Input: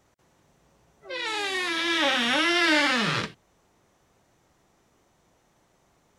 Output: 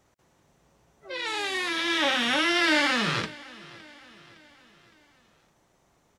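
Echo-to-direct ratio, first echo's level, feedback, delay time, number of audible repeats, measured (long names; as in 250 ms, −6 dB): −20.0 dB, −21.5 dB, 51%, 562 ms, 3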